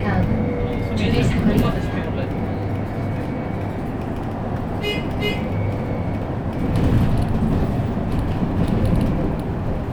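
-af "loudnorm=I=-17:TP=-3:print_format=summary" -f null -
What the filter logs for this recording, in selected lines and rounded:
Input Integrated:    -22.0 LUFS
Input True Peak:      -4.7 dBTP
Input LRA:             3.3 LU
Input Threshold:     -32.0 LUFS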